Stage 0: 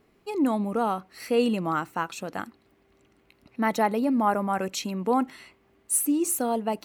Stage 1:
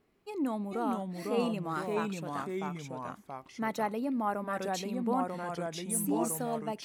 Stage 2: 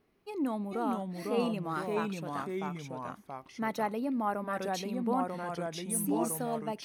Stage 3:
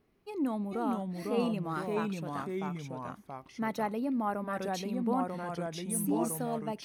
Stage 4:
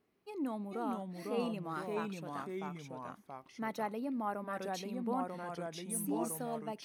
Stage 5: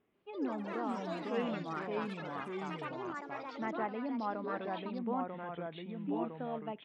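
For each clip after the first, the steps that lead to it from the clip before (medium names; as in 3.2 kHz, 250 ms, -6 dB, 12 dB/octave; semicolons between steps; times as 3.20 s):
ever faster or slower copies 409 ms, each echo -2 st, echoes 2; trim -8.5 dB
band-stop 7.4 kHz, Q 5.2
bass shelf 220 Hz +5.5 dB; trim -1.5 dB
high-pass 200 Hz 6 dB/octave; trim -4 dB
resampled via 8 kHz; ever faster or slower copies 141 ms, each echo +6 st, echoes 3, each echo -6 dB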